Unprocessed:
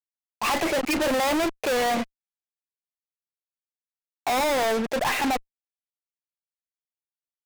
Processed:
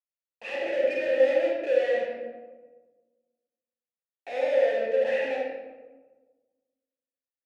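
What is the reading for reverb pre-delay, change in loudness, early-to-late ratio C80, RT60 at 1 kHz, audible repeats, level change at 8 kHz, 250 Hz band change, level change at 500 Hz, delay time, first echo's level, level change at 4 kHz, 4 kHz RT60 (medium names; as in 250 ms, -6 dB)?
31 ms, -1.5 dB, 2.0 dB, 1.2 s, no echo, under -20 dB, -13.0 dB, +3.5 dB, no echo, no echo, -12.5 dB, 0.70 s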